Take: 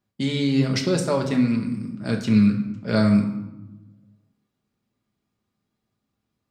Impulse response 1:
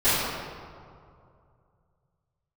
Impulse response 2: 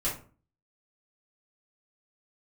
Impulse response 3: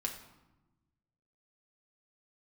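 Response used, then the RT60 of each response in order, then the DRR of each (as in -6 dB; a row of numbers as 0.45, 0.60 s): 3; 2.4, 0.40, 1.0 s; -19.5, -8.5, 1.0 dB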